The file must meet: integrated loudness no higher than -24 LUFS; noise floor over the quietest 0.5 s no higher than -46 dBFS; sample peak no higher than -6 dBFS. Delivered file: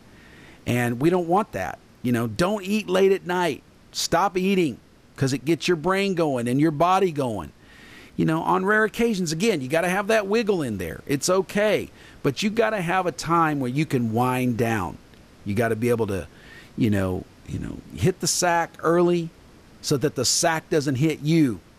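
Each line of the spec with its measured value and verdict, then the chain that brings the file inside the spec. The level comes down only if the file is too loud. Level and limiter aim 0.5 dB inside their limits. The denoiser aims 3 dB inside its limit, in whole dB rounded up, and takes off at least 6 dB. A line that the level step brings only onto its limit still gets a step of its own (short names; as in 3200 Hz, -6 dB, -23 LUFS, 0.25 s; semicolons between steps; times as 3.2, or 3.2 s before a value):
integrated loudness -23.0 LUFS: fail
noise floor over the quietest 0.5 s -49 dBFS: OK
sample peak -9.0 dBFS: OK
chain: gain -1.5 dB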